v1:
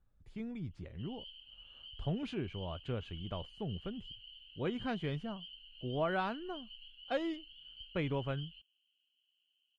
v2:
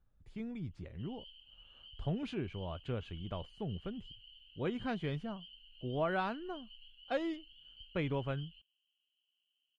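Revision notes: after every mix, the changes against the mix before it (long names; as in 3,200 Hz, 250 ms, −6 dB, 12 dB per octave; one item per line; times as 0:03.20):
background −4.0 dB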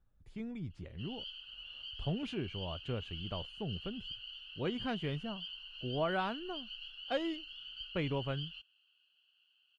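background: remove formant filter i
master: add high-shelf EQ 7,100 Hz +4.5 dB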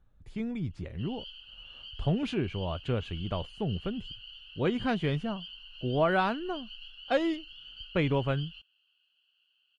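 speech +8.0 dB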